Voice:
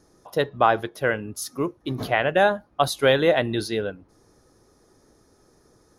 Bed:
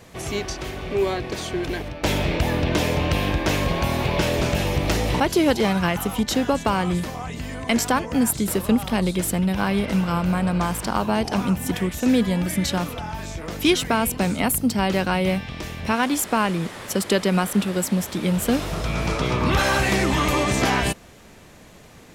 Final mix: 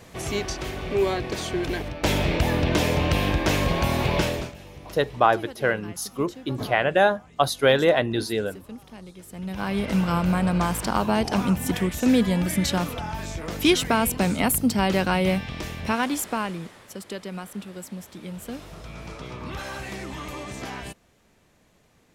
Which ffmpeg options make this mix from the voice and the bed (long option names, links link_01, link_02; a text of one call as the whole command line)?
ffmpeg -i stem1.wav -i stem2.wav -filter_complex "[0:a]adelay=4600,volume=0dB[link_01];[1:a]volume=20dB,afade=type=out:start_time=4.17:duration=0.36:silence=0.0944061,afade=type=in:start_time=9.29:duration=0.74:silence=0.0944061,afade=type=out:start_time=15.6:duration=1.26:silence=0.199526[link_02];[link_01][link_02]amix=inputs=2:normalize=0" out.wav